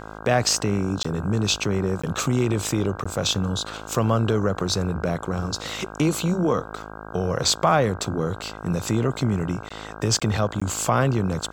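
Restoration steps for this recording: de-hum 53.2 Hz, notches 30; interpolate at 1.03/2.02/3.04/9.69/10.2/10.6, 15 ms

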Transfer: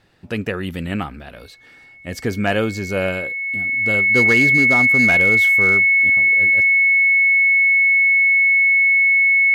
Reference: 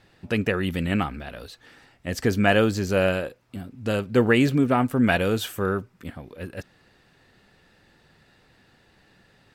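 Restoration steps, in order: clip repair -8.5 dBFS; notch 2200 Hz, Q 30

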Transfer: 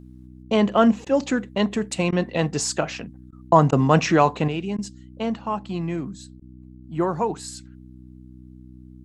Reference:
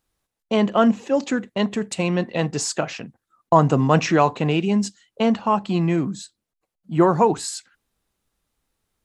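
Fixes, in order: de-hum 62.7 Hz, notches 5; interpolate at 1.05/2.11/3.31/3.71/4.77/6.4, 13 ms; gain 0 dB, from 4.48 s +7 dB

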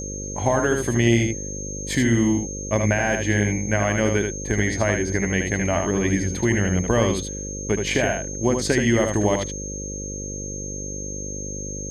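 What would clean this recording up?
de-hum 49.8 Hz, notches 11; notch 6400 Hz, Q 30; inverse comb 77 ms -5 dB

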